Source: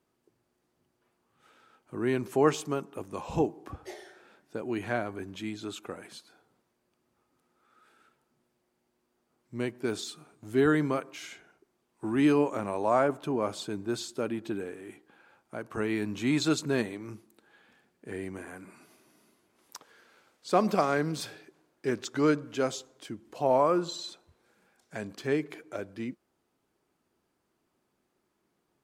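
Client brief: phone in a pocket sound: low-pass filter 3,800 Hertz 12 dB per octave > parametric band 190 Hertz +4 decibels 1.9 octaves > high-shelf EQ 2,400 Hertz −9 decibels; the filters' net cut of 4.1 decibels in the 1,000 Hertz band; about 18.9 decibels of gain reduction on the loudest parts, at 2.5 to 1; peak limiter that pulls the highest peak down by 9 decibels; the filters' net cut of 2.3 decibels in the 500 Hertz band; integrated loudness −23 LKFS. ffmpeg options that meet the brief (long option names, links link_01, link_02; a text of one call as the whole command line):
ffmpeg -i in.wav -af "equalizer=frequency=500:width_type=o:gain=-3.5,equalizer=frequency=1000:width_type=o:gain=-3,acompressor=threshold=-51dB:ratio=2.5,alimiter=level_in=15.5dB:limit=-24dB:level=0:latency=1,volume=-15.5dB,lowpass=3800,equalizer=frequency=190:width_type=o:width=1.9:gain=4,highshelf=frequency=2400:gain=-9,volume=27dB" out.wav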